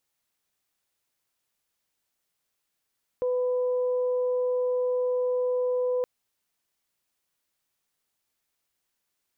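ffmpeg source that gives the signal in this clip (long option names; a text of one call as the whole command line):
ffmpeg -f lavfi -i "aevalsrc='0.0708*sin(2*PI*499*t)+0.00841*sin(2*PI*998*t)':duration=2.82:sample_rate=44100" out.wav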